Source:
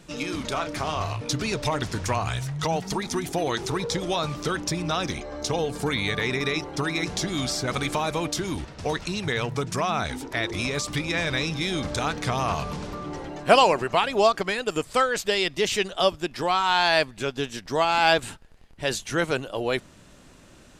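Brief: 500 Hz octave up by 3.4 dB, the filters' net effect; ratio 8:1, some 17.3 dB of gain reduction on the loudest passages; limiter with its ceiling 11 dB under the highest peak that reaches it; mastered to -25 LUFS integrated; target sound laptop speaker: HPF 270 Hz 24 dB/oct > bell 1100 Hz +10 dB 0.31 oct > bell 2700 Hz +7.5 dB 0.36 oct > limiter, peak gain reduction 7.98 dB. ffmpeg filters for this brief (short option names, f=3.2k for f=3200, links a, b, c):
-af "equalizer=f=500:t=o:g=4,acompressor=threshold=-28dB:ratio=8,alimiter=level_in=2.5dB:limit=-24dB:level=0:latency=1,volume=-2.5dB,highpass=f=270:w=0.5412,highpass=f=270:w=1.3066,equalizer=f=1.1k:t=o:w=0.31:g=10,equalizer=f=2.7k:t=o:w=0.36:g=7.5,volume=12dB,alimiter=limit=-15dB:level=0:latency=1"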